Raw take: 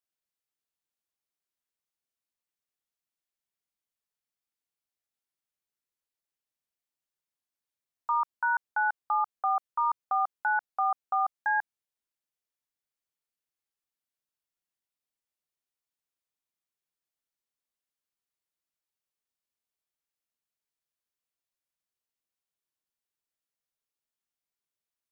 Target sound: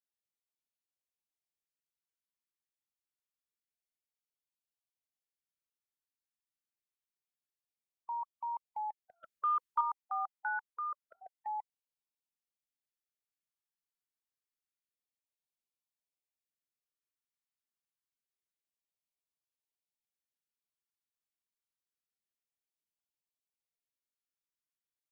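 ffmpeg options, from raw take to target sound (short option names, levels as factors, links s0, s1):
-filter_complex "[0:a]asettb=1/sr,asplit=3[s0][s1][s2];[s0]atrim=end=9.234[s3];[s1]atrim=start=9.23:end=9.81,asetpts=PTS-STARTPTS,afade=t=in:d=0.004:c=qsin,afade=t=out:st=0.576:d=0.004:c=qsin,acontrast=87[s4];[s2]atrim=start=9.806[s5];[s3][s4]acrossfade=d=0.004:c1=hsin:c2=qsin[s6];[s6][s5]acrossfade=d=0.004:c1=qsin:c2=hsin,afftfilt=real='re*(1-between(b*sr/1024,540*pow(1600/540,0.5+0.5*sin(2*PI*0.27*pts/sr))/1.41,540*pow(1600/540,0.5+0.5*sin(2*PI*0.27*pts/sr))*1.41))':imag='im*(1-between(b*sr/1024,540*pow(1600/540,0.5+0.5*sin(2*PI*0.27*pts/sr))/1.41,540*pow(1600/540,0.5+0.5*sin(2*PI*0.27*pts/sr))*1.41))':win_size=1024:overlap=0.75,volume=0.398"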